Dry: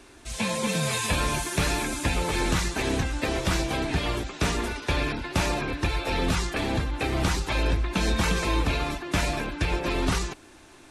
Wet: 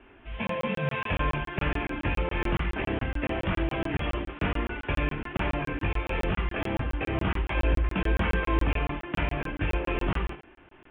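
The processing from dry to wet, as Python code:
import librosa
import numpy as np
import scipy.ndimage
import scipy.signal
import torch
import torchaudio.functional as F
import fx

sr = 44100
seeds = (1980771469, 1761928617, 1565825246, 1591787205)

p1 = scipy.signal.sosfilt(scipy.signal.butter(16, 3200.0, 'lowpass', fs=sr, output='sos'), x)
p2 = p1 + fx.room_early_taps(p1, sr, ms=(21, 61, 75), db=(-4.5, -13.5, -8.5), dry=0)
p3 = fx.buffer_crackle(p2, sr, first_s=0.47, period_s=0.14, block=1024, kind='zero')
y = p3 * librosa.db_to_amplitude(-4.0)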